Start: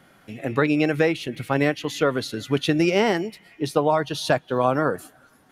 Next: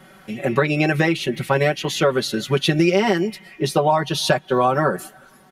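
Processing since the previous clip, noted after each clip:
comb filter 5.3 ms, depth 89%
downward compressor 4 to 1, threshold −18 dBFS, peak gain reduction 7.5 dB
level +4.5 dB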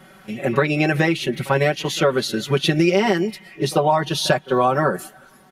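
backwards echo 43 ms −20 dB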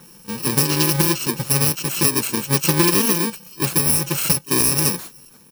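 samples in bit-reversed order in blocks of 64 samples
highs frequency-modulated by the lows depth 0.17 ms
level +2 dB

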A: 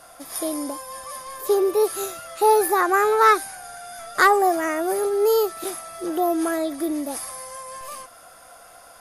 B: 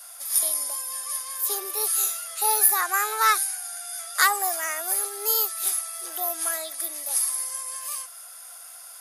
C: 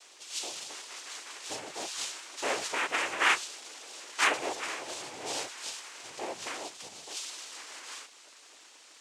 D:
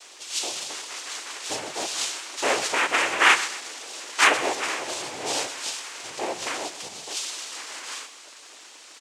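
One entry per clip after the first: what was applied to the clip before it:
Bessel high-pass filter 650 Hz, order 8; spectral tilt +4.5 dB per octave; level −5.5 dB
cochlear-implant simulation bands 4; surface crackle 24 per second −50 dBFS; level −5 dB
repeating echo 127 ms, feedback 39%, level −14.5 dB; level +8 dB

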